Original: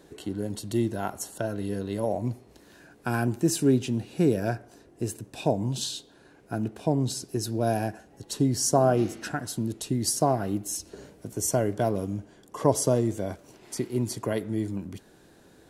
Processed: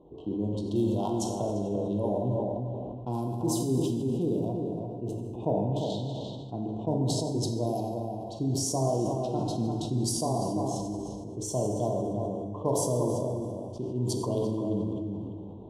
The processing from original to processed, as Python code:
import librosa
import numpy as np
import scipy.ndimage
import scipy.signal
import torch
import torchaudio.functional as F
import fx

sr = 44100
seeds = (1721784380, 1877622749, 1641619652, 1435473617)

y = fx.wiener(x, sr, points=9)
y = scipy.signal.sosfilt(scipy.signal.cheby1(3, 1.0, [990.0, 3200.0], 'bandstop', fs=sr, output='sos'), y)
y = fx.env_lowpass(y, sr, base_hz=2000.0, full_db=-21.5)
y = fx.high_shelf(y, sr, hz=2500.0, db=11.0, at=(0.66, 1.34))
y = fx.rider(y, sr, range_db=4, speed_s=0.5)
y = fx.band_shelf(y, sr, hz=6300.0, db=-11.5, octaves=1.7, at=(4.48, 5.9))
y = fx.echo_filtered(y, sr, ms=344, feedback_pct=17, hz=1800.0, wet_db=-4.5)
y = fx.rev_plate(y, sr, seeds[0], rt60_s=1.5, hf_ratio=0.9, predelay_ms=0, drr_db=1.0)
y = fx.sustainer(y, sr, db_per_s=22.0)
y = F.gain(torch.from_numpy(y), -5.5).numpy()